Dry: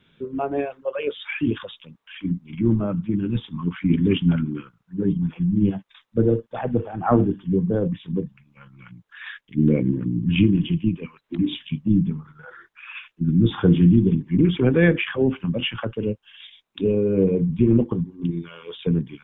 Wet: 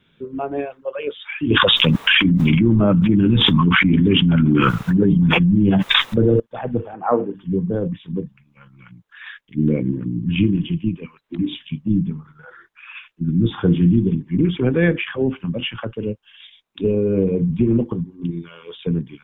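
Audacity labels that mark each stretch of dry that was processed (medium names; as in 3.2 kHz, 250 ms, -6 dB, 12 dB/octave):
1.500000	6.400000	level flattener amount 100%
6.940000	7.350000	cabinet simulation 310–2600 Hz, peaks and dips at 330 Hz -4 dB, 490 Hz +8 dB, 1 kHz +4 dB, 1.6 kHz -3 dB
16.840000	17.920000	three bands compressed up and down depth 70%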